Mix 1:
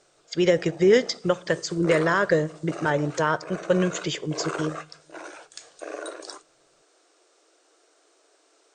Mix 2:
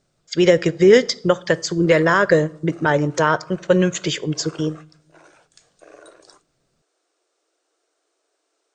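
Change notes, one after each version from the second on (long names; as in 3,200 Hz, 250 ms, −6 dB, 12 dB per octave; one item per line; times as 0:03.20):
speech +6.0 dB
background −10.0 dB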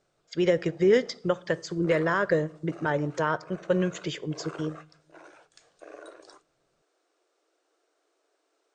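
speech −9.0 dB
master: add high-shelf EQ 4,800 Hz −9.5 dB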